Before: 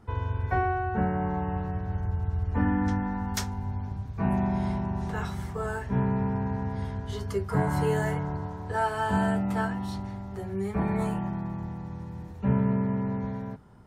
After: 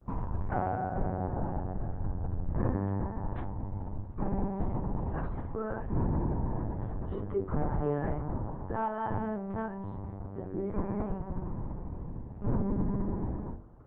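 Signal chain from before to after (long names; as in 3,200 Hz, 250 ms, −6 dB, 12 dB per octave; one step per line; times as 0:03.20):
soft clipping −21.5 dBFS, distortion −16 dB
linear-prediction vocoder at 8 kHz pitch kept
low-pass filter 1,000 Hz 12 dB per octave
hum removal 47.14 Hz, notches 22
Opus 24 kbit/s 48,000 Hz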